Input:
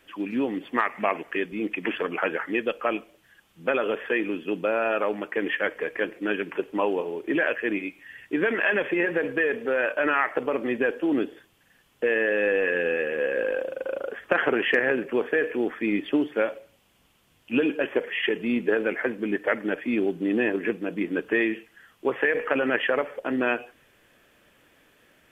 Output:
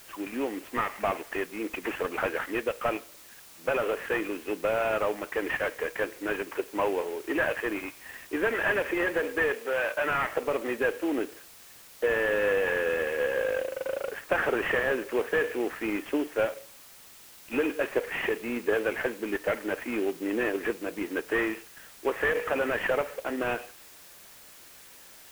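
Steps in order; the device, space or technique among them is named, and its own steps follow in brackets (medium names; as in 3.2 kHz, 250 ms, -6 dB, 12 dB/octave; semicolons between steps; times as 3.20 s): army field radio (band-pass 370–2800 Hz; CVSD coder 16 kbps; white noise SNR 21 dB); 9.54–10.10 s: bass shelf 250 Hz -12 dB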